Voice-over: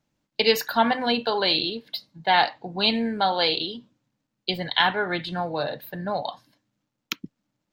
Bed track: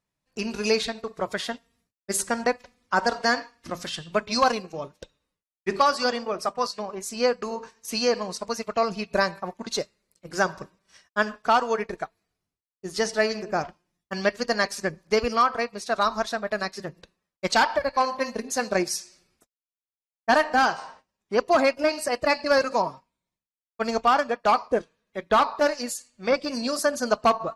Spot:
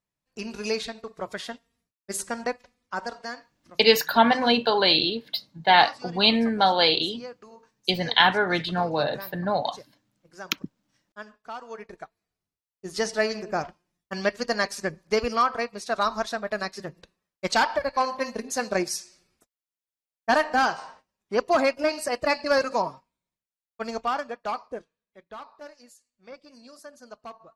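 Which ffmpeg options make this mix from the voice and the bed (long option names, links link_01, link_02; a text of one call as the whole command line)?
ffmpeg -i stem1.wav -i stem2.wav -filter_complex "[0:a]adelay=3400,volume=2.5dB[link_01];[1:a]volume=11dB,afade=type=out:start_time=2.53:duration=0.94:silence=0.237137,afade=type=in:start_time=11.59:duration=1.39:silence=0.158489,afade=type=out:start_time=22.82:duration=2.48:silence=0.1[link_02];[link_01][link_02]amix=inputs=2:normalize=0" out.wav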